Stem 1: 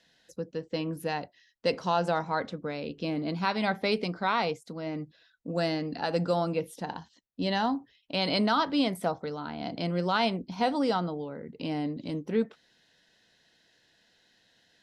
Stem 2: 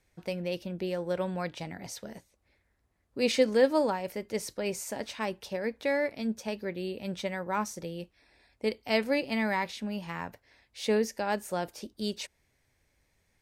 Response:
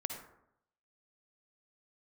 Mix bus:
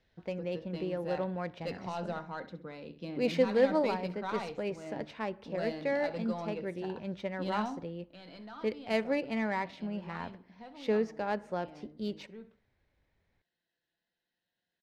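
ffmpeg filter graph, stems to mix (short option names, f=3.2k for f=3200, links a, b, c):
-filter_complex "[0:a]aemphasis=mode=production:type=75kf,asoftclip=type=tanh:threshold=-17dB,flanger=delay=4.5:depth=1.4:regen=64:speed=0.18:shape=triangular,volume=-5dB,afade=t=out:st=7.76:d=0.28:silence=0.281838,asplit=2[a][b];[b]volume=-13dB[c];[1:a]volume=-3.5dB,asplit=2[d][e];[e]volume=-16.5dB[f];[2:a]atrim=start_sample=2205[g];[f][g]afir=irnorm=-1:irlink=0[h];[c]aecho=0:1:66|132|198|264:1|0.29|0.0841|0.0244[i];[a][d][h][i]amix=inputs=4:normalize=0,highshelf=f=3.9k:g=-10.5,adynamicsmooth=sensitivity=6.5:basefreq=3.9k"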